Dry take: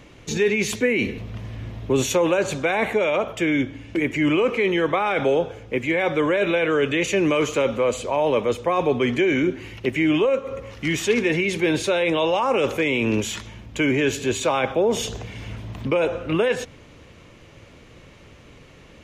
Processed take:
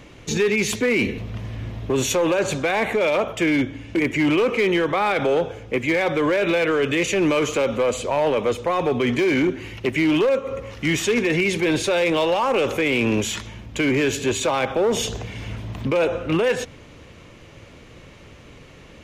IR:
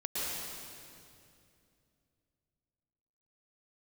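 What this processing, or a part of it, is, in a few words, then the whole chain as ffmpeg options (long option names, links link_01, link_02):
limiter into clipper: -af "alimiter=limit=-13dB:level=0:latency=1:release=76,asoftclip=type=hard:threshold=-17dB,volume=2.5dB"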